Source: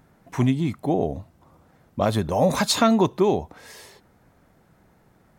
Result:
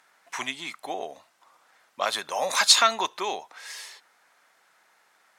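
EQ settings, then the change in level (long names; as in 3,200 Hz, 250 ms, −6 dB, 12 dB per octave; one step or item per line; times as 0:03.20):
high-pass filter 1,300 Hz 12 dB per octave
high-frequency loss of the air 53 metres
high-shelf EQ 6,300 Hz +8 dB
+6.0 dB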